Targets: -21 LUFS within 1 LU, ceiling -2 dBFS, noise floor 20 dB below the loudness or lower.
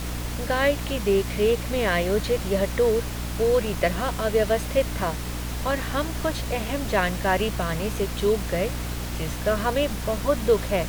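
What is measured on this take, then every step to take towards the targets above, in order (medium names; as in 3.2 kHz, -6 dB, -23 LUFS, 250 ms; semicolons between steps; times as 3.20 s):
hum 60 Hz; highest harmonic 300 Hz; hum level -29 dBFS; noise floor -31 dBFS; noise floor target -45 dBFS; loudness -25.0 LUFS; peak level -7.5 dBFS; loudness target -21.0 LUFS
-> hum notches 60/120/180/240/300 Hz; noise print and reduce 14 dB; trim +4 dB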